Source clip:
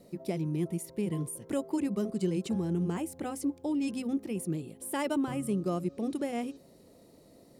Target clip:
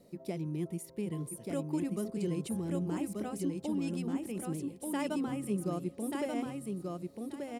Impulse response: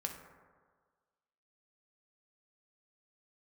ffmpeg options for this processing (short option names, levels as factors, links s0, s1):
-af "aecho=1:1:1184|2368|3552:0.668|0.134|0.0267,volume=0.596"